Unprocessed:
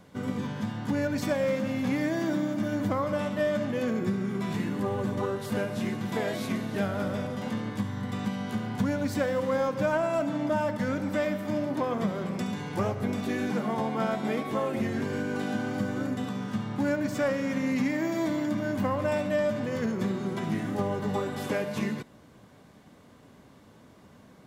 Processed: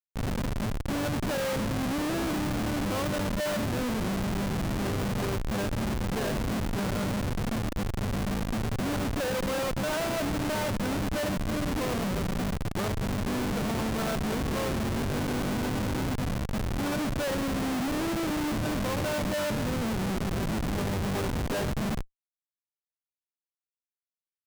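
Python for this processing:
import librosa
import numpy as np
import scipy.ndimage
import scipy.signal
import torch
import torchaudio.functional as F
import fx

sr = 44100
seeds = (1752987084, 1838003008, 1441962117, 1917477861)

y = fx.high_shelf_res(x, sr, hz=2200.0, db=-10.0, q=3.0)
y = fx.schmitt(y, sr, flips_db=-28.5)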